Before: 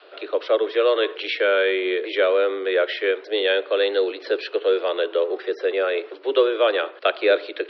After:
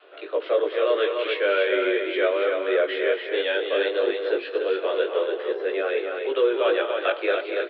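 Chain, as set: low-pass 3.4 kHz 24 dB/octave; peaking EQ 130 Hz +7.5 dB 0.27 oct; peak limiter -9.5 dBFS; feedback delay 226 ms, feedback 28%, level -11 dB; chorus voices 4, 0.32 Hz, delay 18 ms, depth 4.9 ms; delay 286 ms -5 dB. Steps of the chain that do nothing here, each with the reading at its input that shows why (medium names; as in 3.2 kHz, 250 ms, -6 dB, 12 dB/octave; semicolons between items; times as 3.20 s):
peaking EQ 130 Hz: input has nothing below 270 Hz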